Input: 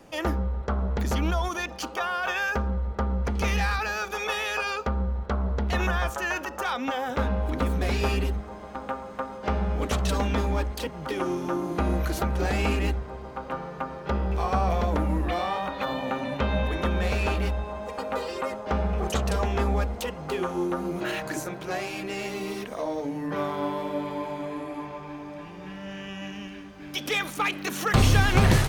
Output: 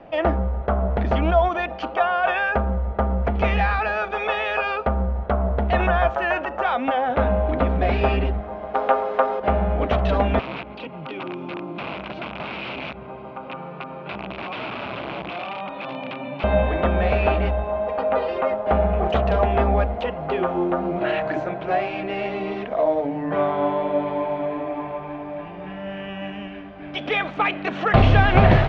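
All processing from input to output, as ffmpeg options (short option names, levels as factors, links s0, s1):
-filter_complex "[0:a]asettb=1/sr,asplit=3[s0][s1][s2];[s0]atrim=end=8.744[s3];[s1]atrim=start=8.74:end=9.4,asetpts=PTS-STARTPTS,afade=t=in:d=0.004:c=qsin,afade=t=out:st=0.656:d=0.004:c=qsin,bass=f=250:g=-15,treble=f=4000:g=9,acontrast=66,aeval=exprs='val(0)+0.02*sin(2*PI*420*n/s)':c=same[s4];[s2]atrim=start=9.396[s5];[s3][s4]acrossfade=d=0.004:c1=hsin:c2=qsin[s6];[s6][s5]acrossfade=d=0.004:c1=qsin:c2=hsin,asettb=1/sr,asplit=3[s7][s8][s9];[s7]atrim=end=10.394[s10];[s8]atrim=start=10.39:end=16.44,asetpts=PTS-STARTPTS,afade=t=in:d=0.004:c=qsin,afade=t=out:st=6.046:d=0.004:c=qsin,aeval=exprs='(mod(10.6*val(0)+1,2)-1)/10.6':c=same,highpass=f=110:w=0.5412,highpass=f=110:w=1.3066,equalizer=f=470:t=q:w=4:g=-5,equalizer=f=690:t=q:w=4:g=-9,equalizer=f=1800:t=q:w=4:g=-9,equalizer=f=2500:t=q:w=4:g=7,lowpass=f=5300:w=0.5412,lowpass=f=5300:w=1.3066,acompressor=threshold=0.0141:ratio=2:attack=3.2:release=140:knee=1:detection=peak[s11];[s9]atrim=start=16.436[s12];[s10][s11]acrossfade=d=0.004:c1=hsin:c2=qsin[s13];[s13][s12]acrossfade=d=0.004:c1=qsin:c2=hsin,lowpass=f=3100:w=0.5412,lowpass=f=3100:w=1.3066,equalizer=f=670:w=3.7:g=12,volume=1.58"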